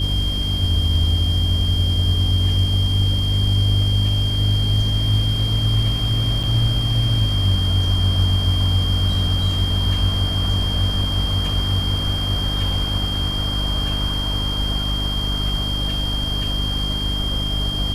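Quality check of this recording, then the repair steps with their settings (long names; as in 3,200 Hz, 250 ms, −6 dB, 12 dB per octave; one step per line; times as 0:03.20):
mains hum 50 Hz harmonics 6 −24 dBFS
whistle 3,200 Hz −24 dBFS
0:06.43–0:06.44: drop-out 5.7 ms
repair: notch filter 3,200 Hz, Q 30
hum removal 50 Hz, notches 6
repair the gap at 0:06.43, 5.7 ms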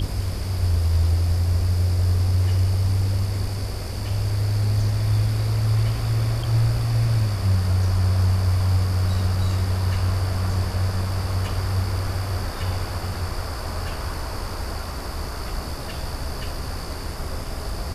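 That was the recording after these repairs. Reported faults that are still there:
none of them is left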